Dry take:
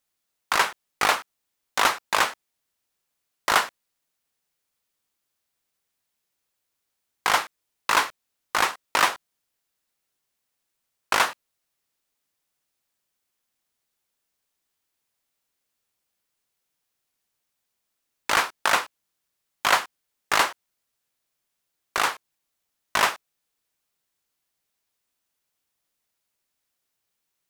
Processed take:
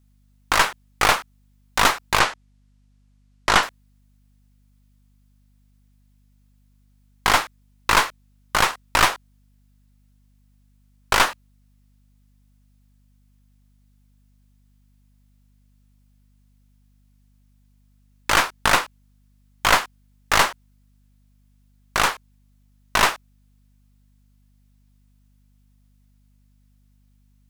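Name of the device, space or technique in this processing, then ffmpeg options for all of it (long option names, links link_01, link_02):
valve amplifier with mains hum: -filter_complex "[0:a]asettb=1/sr,asplit=3[link_01][link_02][link_03];[link_01]atrim=end=2.194[link_04];[link_02]atrim=start=2.19:end=3.63,asetpts=PTS-STARTPTS,afade=type=in:duration=0.004:curve=qsin,afade=type=out:start_time=1.436:duration=0.004:curve=qsin,lowpass=7900[link_05];[link_03]atrim=start=3.626[link_06];[link_04][link_05]acrossfade=duration=0.004:curve1=hsin:curve2=qsin[link_07];[link_07][link_06]acrossfade=duration=0.004:curve1=qsin:curve2=hsin,aeval=exprs='(tanh(5.01*val(0)+0.7)-tanh(0.7))/5.01':channel_layout=same,aeval=exprs='val(0)+0.000562*(sin(2*PI*50*n/s)+sin(2*PI*2*50*n/s)/2+sin(2*PI*3*50*n/s)/3+sin(2*PI*4*50*n/s)/4+sin(2*PI*5*50*n/s)/5)':channel_layout=same,volume=7.5dB"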